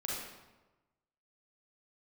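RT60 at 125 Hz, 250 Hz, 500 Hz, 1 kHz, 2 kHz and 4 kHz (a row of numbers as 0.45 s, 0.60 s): 1.3 s, 1.2 s, 1.2 s, 1.1 s, 0.90 s, 0.75 s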